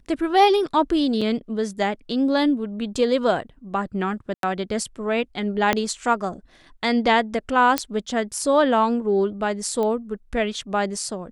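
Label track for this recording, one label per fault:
1.210000	1.220000	gap 5.2 ms
4.340000	4.430000	gap 92 ms
5.730000	5.730000	pop -5 dBFS
7.780000	7.780000	pop -4 dBFS
9.830000	9.830000	pop -15 dBFS

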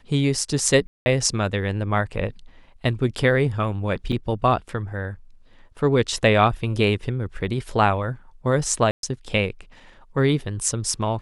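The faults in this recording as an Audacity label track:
0.870000	1.060000	gap 0.19 s
4.120000	4.130000	gap 5.1 ms
8.910000	9.030000	gap 0.122 s

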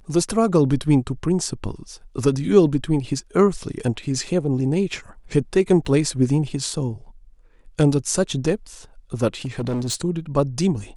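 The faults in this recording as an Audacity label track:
5.850000	5.850000	gap 4.9 ms
9.450000	9.950000	clipped -20.5 dBFS

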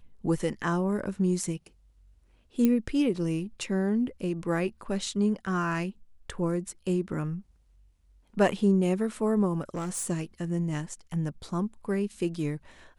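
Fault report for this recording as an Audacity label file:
2.650000	2.650000	pop -12 dBFS
9.610000	10.100000	clipped -28.5 dBFS

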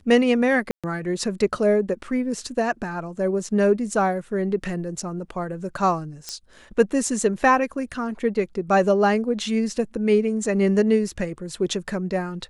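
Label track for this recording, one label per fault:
0.710000	0.840000	gap 0.126 s
6.290000	6.290000	pop -16 dBFS

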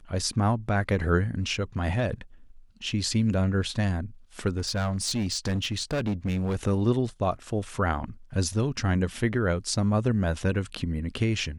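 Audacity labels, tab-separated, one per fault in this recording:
4.570000	6.560000	clipped -23.5 dBFS

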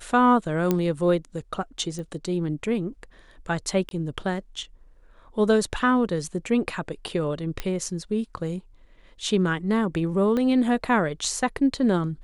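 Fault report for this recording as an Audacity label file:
0.710000	0.710000	pop -9 dBFS
1.990000	1.990000	pop -24 dBFS
3.890000	3.910000	gap 22 ms
7.600000	7.600000	pop -14 dBFS
10.370000	10.370000	pop -16 dBFS

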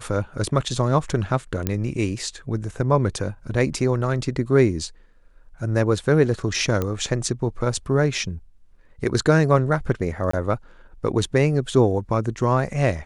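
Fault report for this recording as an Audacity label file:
1.670000	1.670000	pop -8 dBFS
6.820000	6.820000	pop -11 dBFS
10.310000	10.330000	gap 24 ms

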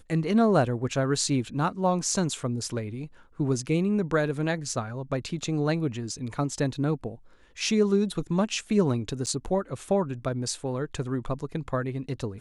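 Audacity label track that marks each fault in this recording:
9.260000	9.270000	gap 8.5 ms

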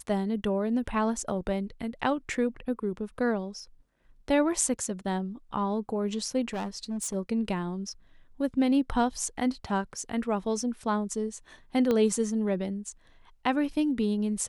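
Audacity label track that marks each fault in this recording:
6.530000	7.150000	clipped -29 dBFS
11.910000	11.910000	pop -15 dBFS

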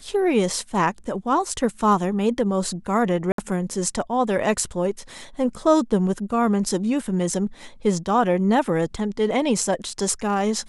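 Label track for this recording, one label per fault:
3.320000	3.380000	gap 63 ms

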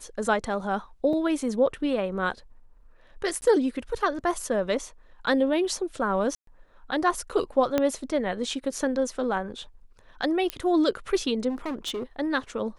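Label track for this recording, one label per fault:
1.130000	1.130000	gap 3.1 ms
3.410000	3.420000	gap 10 ms
6.350000	6.470000	gap 0.123 s
7.780000	7.780000	pop -10 dBFS
10.500000	10.500000	pop -12 dBFS
11.490000	12.030000	clipped -27.5 dBFS

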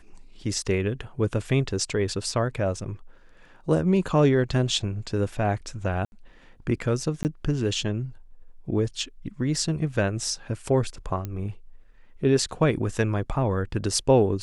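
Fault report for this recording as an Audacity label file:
6.050000	6.120000	gap 71 ms
7.230000	7.250000	gap 19 ms
11.250000	11.250000	pop -18 dBFS

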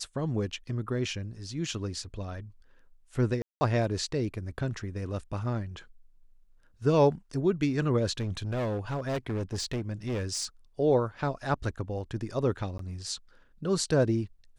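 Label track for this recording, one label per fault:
3.420000	3.610000	gap 0.19 s
8.180000	10.450000	clipped -27.5 dBFS
12.780000	12.790000	gap 13 ms

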